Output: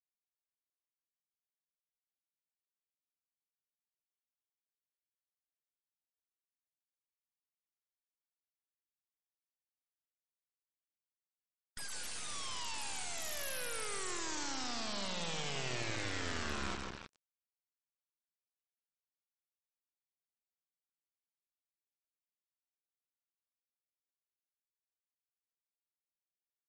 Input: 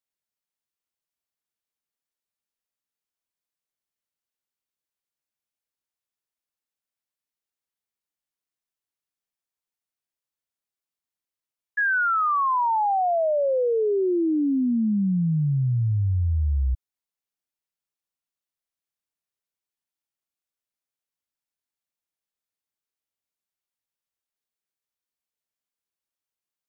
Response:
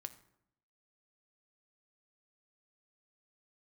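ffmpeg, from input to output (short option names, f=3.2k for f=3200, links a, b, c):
-filter_complex "[0:a]aeval=exprs='val(0)+0.5*0.0075*sgn(val(0))':c=same,lowpass=f=1.6k:w=0.5412,lowpass=f=1.6k:w=1.3066,aeval=exprs='(mod(59.6*val(0)+1,2)-1)/59.6':c=same,aecho=1:1:156|312|468|624|780|936|1092:0.501|0.286|0.163|0.0928|0.0529|0.0302|0.0172,asplit=2[a][b];[1:a]atrim=start_sample=2205[c];[b][c]afir=irnorm=-1:irlink=0,volume=-3dB[d];[a][d]amix=inputs=2:normalize=0,acrusher=bits=4:dc=4:mix=0:aa=0.000001,afftdn=nr=15:nf=-55" -ar 32000 -c:a sbc -b:a 64k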